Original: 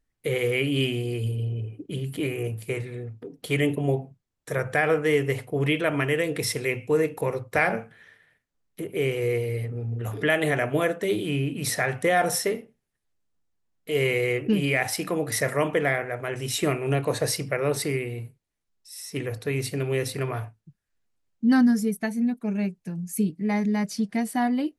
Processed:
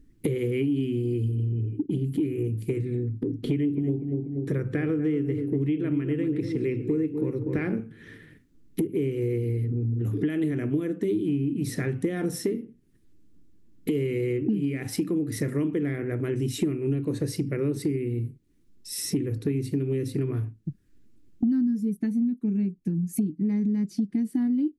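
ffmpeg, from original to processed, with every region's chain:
ffmpeg -i in.wav -filter_complex "[0:a]asettb=1/sr,asplit=3[link_01][link_02][link_03];[link_01]atrim=end=2.994[link_04];[link_02]atrim=start=2.99:end=7.8,asetpts=PTS-STARTPTS,afade=type=in:duration=0.004:curve=qsin,afade=type=out:start_time=4.806:duration=0.004:curve=qsin,acrossover=split=4200[link_05][link_06];[link_06]acompressor=threshold=-54dB:ratio=4:attack=1:release=60[link_07];[link_05][link_07]amix=inputs=2:normalize=0,asplit=2[link_08][link_09];[link_09]adelay=242,lowpass=frequency=1200:poles=1,volume=-8.5dB,asplit=2[link_10][link_11];[link_11]adelay=242,lowpass=frequency=1200:poles=1,volume=0.34,asplit=2[link_12][link_13];[link_13]adelay=242,lowpass=frequency=1200:poles=1,volume=0.34,asplit=2[link_14][link_15];[link_15]adelay=242,lowpass=frequency=1200:poles=1,volume=0.34[link_16];[link_08][link_10][link_12][link_14][link_16]amix=inputs=5:normalize=0,atrim=end_sample=212121[link_17];[link_03]atrim=start=7.796[link_18];[link_04][link_17]acrossfade=duration=0.004:curve1=hsin:curve2=qsin[link_19];[link_19][link_18]acrossfade=duration=0.004:curve1=qsin:curve2=hsin,lowshelf=frequency=460:width_type=q:width=3:gain=13.5,acompressor=threshold=-34dB:ratio=6,volume=7.5dB" out.wav

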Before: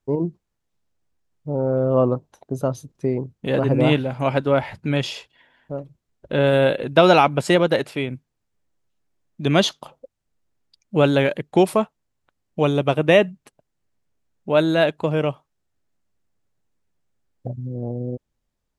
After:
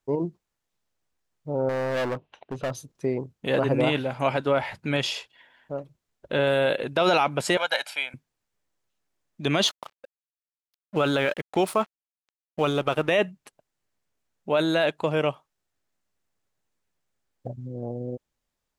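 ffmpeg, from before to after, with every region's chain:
ffmpeg -i in.wav -filter_complex "[0:a]asettb=1/sr,asplit=3[link_01][link_02][link_03];[link_01]atrim=end=1.694[link_04];[link_02]atrim=start=1.69:end=2.71,asetpts=PTS-STARTPTS,afade=type=in:duration=0.004:curve=qsin,afade=type=out:start_time=1.016:duration=0.004:curve=qsin,lowpass=frequency=2800:width_type=q:width=3.8,asoftclip=type=hard:threshold=-22dB[link_05];[link_03]atrim=start=2.706[link_06];[link_04][link_05]acrossfade=duration=0.004:curve1=hsin:curve2=qsin[link_07];[link_07][link_06]acrossfade=duration=0.004:curve1=qsin:curve2=hsin,asettb=1/sr,asplit=3[link_08][link_09][link_10];[link_08]atrim=end=7.574[link_11];[link_09]atrim=start=7.57:end=8.14,asetpts=PTS-STARTPTS,afade=type=in:duration=0.004:curve=qsin,afade=type=out:start_time=0.566:duration=0.004:curve=qsin,highpass=880,aecho=1:1:1.3:0.66,atrim=end_sample=25137[link_12];[link_10]atrim=start=8.136[link_13];[link_11][link_12]acrossfade=duration=0.004:curve1=hsin:curve2=qsin[link_14];[link_14][link_13]acrossfade=duration=0.004:curve1=qsin:curve2=hsin,asettb=1/sr,asplit=3[link_15][link_16][link_17];[link_15]atrim=end=9.674[link_18];[link_16]atrim=start=9.67:end=13.11,asetpts=PTS-STARTPTS,afade=type=in:duration=0.004:curve=qsin,afade=type=out:start_time=3.436:duration=0.004:curve=qsin,equalizer=frequency=1300:width=5.2:gain=7,aeval=exprs='sgn(val(0))*max(abs(val(0))-0.00794,0)':channel_layout=same[link_19];[link_17]atrim=start=13.106[link_20];[link_18][link_19]acrossfade=duration=0.004:curve1=hsin:curve2=qsin[link_21];[link_21][link_20]acrossfade=duration=0.004:curve1=qsin:curve2=hsin,lowshelf=frequency=400:gain=-9.5,alimiter=limit=-13dB:level=0:latency=1:release=20,volume=1.5dB" out.wav

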